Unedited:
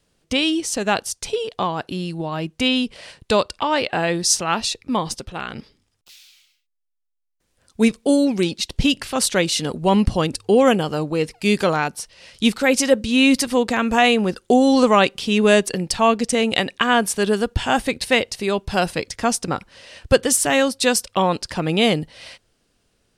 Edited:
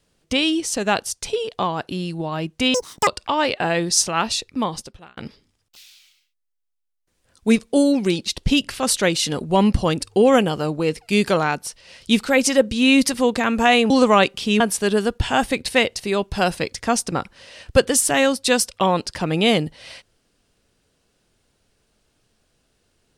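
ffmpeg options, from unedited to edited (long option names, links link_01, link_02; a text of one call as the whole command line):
ffmpeg -i in.wav -filter_complex "[0:a]asplit=6[link_01][link_02][link_03][link_04][link_05][link_06];[link_01]atrim=end=2.744[link_07];[link_02]atrim=start=2.74:end=3.4,asetpts=PTS-STARTPTS,asetrate=87759,aresample=44100,atrim=end_sample=14626,asetpts=PTS-STARTPTS[link_08];[link_03]atrim=start=3.396:end=5.5,asetpts=PTS-STARTPTS,afade=type=out:start_time=1.464:duration=0.64[link_09];[link_04]atrim=start=5.5:end=14.232,asetpts=PTS-STARTPTS,afade=type=in:duration=0.004:curve=hsin[link_10];[link_05]atrim=start=14.708:end=15.412[link_11];[link_06]atrim=start=16.958[link_12];[link_07][link_08]acrossfade=duration=0.004:curve1=hsin:curve2=hsin[link_13];[link_09][link_10]concat=n=2:v=0:a=1[link_14];[link_13][link_14]acrossfade=duration=0.004:curve1=hsin:curve2=hsin[link_15];[link_15][link_11]acrossfade=duration=0.004:curve1=hsin:curve2=hsin[link_16];[link_16][link_12]acrossfade=duration=0.004:curve1=hsin:curve2=hsin" out.wav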